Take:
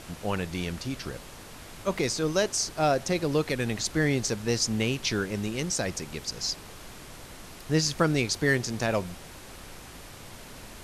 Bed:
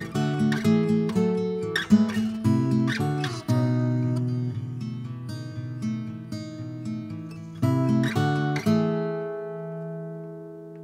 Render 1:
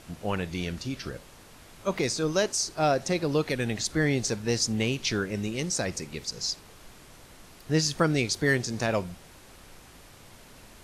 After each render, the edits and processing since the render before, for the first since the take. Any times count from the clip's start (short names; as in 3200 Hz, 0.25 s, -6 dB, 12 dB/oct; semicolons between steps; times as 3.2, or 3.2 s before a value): noise print and reduce 6 dB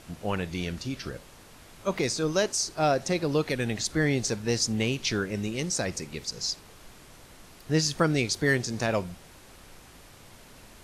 nothing audible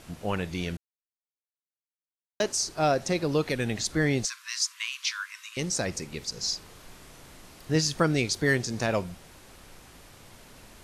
0.77–2.4 mute; 4.25–5.57 brick-wall FIR high-pass 960 Hz; 6.39–7.76 doubler 38 ms -5 dB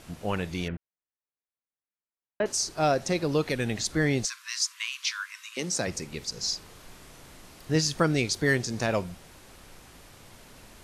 0.68–2.46 LPF 2300 Hz 24 dB/oct; 5.38–5.86 HPF 380 Hz -> 97 Hz 24 dB/oct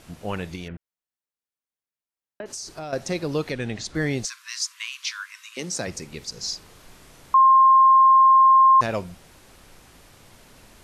0.55–2.93 compressor, threshold -31 dBFS; 3.5–3.95 air absorption 62 m; 7.34–8.81 bleep 1060 Hz -10.5 dBFS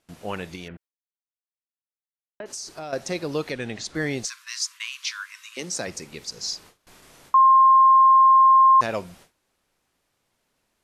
gate with hold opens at -37 dBFS; low shelf 150 Hz -9.5 dB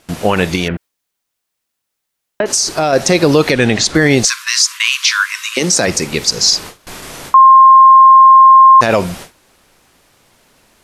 maximiser +21 dB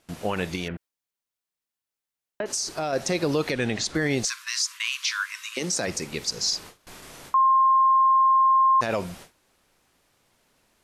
gain -14 dB